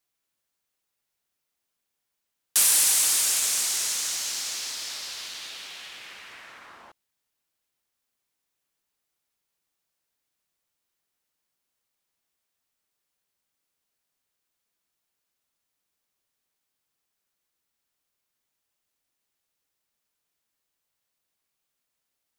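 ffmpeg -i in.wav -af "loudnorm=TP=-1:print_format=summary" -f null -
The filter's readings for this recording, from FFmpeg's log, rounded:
Input Integrated:    -21.9 LUFS
Input True Peak:      -7.5 dBTP
Input LRA:            10.3 LU
Input Threshold:     -34.1 LUFS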